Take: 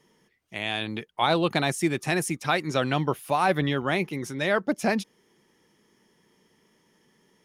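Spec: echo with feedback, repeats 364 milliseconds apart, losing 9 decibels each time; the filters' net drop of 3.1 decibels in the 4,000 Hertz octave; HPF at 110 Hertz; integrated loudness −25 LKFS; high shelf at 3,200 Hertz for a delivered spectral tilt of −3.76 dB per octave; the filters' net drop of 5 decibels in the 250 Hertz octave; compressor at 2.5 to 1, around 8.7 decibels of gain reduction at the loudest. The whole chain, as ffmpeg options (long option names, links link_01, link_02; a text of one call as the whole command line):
ffmpeg -i in.wav -af "highpass=110,equalizer=frequency=250:width_type=o:gain=-7,highshelf=frequency=3200:gain=5,equalizer=frequency=4000:width_type=o:gain=-7,acompressor=threshold=-32dB:ratio=2.5,aecho=1:1:364|728|1092|1456:0.355|0.124|0.0435|0.0152,volume=9dB" out.wav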